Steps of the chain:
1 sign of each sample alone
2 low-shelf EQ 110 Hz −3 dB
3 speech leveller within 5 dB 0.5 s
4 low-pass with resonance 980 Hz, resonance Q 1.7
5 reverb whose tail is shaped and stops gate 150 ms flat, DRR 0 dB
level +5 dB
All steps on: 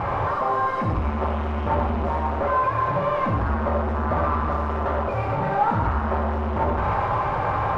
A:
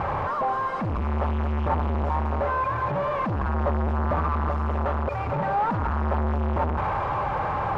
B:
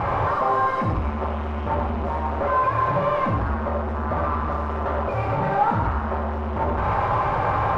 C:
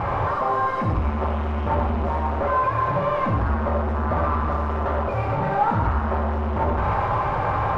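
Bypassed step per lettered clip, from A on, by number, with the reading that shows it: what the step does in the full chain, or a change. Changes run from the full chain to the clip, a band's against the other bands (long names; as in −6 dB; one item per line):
5, change in momentary loudness spread −1 LU
3, change in momentary loudness spread +2 LU
2, 125 Hz band +1.5 dB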